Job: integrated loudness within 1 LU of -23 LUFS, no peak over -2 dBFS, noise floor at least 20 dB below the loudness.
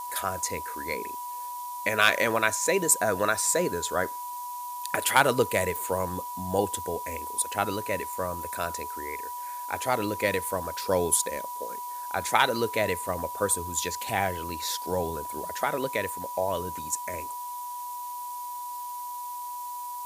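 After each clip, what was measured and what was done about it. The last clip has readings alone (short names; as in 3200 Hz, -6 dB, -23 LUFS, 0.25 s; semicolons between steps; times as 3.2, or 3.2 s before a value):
steady tone 980 Hz; tone level -34 dBFS; noise floor -37 dBFS; noise floor target -49 dBFS; loudness -28.5 LUFS; peak -4.5 dBFS; loudness target -23.0 LUFS
-> notch 980 Hz, Q 30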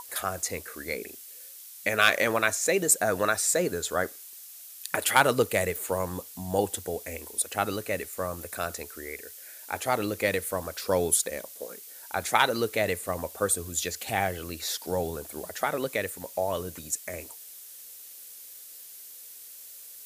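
steady tone none; noise floor -46 dBFS; noise floor target -48 dBFS
-> denoiser 6 dB, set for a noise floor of -46 dBFS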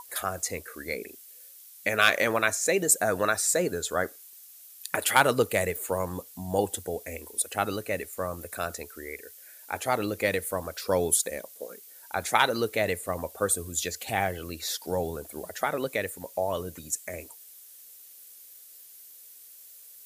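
noise floor -50 dBFS; loudness -28.0 LUFS; peak -5.0 dBFS; loudness target -23.0 LUFS
-> gain +5 dB; limiter -2 dBFS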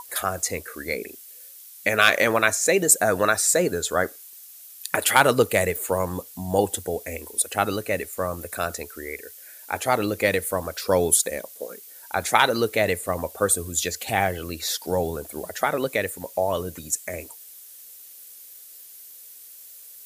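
loudness -23.0 LUFS; peak -2.0 dBFS; noise floor -45 dBFS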